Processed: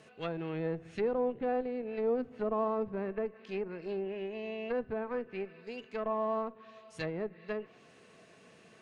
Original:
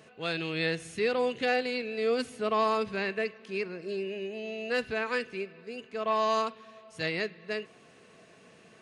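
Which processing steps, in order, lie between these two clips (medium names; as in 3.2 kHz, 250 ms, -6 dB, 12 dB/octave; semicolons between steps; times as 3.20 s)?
Chebyshev shaper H 3 -30 dB, 6 -23 dB, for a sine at -16.5 dBFS; low-pass that closes with the level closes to 790 Hz, closed at -28.5 dBFS; trim -1.5 dB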